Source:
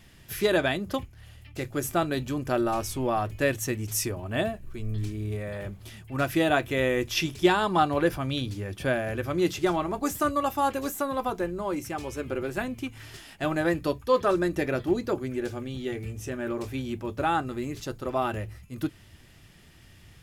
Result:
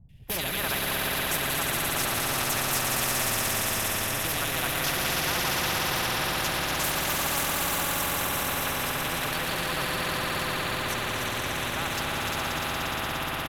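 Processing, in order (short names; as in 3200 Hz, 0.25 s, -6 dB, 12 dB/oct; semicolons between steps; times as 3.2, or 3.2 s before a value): on a send: swelling echo 88 ms, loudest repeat 8, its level -6 dB; on the sum: tempo 1.5×; EQ curve 160 Hz 0 dB, 330 Hz -18 dB, 830 Hz -3 dB, 2700 Hz -4 dB, 4700 Hz -17 dB, 7100 Hz -20 dB, 13000 Hz -12 dB; three bands offset in time lows, highs, mids 90/270 ms, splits 570/2600 Hz; gate with hold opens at -31 dBFS; spectral compressor 4:1; gain +2 dB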